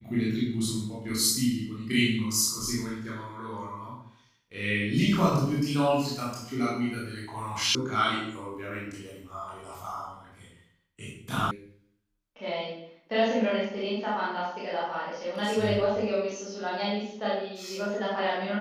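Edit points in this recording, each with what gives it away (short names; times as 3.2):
7.75 sound cut off
11.51 sound cut off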